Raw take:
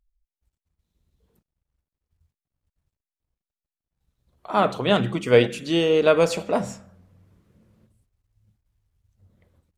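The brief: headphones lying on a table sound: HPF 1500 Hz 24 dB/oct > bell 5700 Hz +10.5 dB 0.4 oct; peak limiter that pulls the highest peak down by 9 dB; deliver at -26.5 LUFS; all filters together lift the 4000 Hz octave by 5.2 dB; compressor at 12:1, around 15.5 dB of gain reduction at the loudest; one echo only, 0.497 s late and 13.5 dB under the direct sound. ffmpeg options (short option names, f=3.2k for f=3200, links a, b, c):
-af "equalizer=f=4k:t=o:g=5.5,acompressor=threshold=-26dB:ratio=12,alimiter=level_in=0.5dB:limit=-24dB:level=0:latency=1,volume=-0.5dB,highpass=f=1.5k:w=0.5412,highpass=f=1.5k:w=1.3066,equalizer=f=5.7k:t=o:w=0.4:g=10.5,aecho=1:1:497:0.211,volume=13dB"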